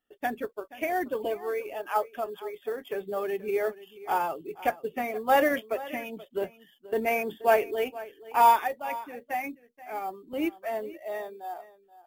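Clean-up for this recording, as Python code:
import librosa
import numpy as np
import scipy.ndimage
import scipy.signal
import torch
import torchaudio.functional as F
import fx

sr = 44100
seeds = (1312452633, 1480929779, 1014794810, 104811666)

y = fx.fix_echo_inverse(x, sr, delay_ms=479, level_db=-17.5)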